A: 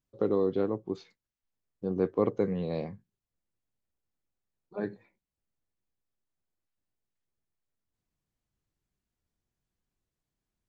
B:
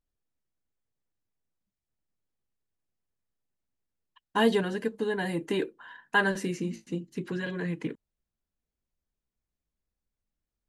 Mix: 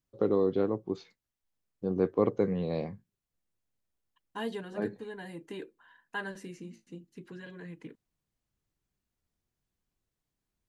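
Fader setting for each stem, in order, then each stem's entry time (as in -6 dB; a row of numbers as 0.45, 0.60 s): +0.5, -12.5 dB; 0.00, 0.00 s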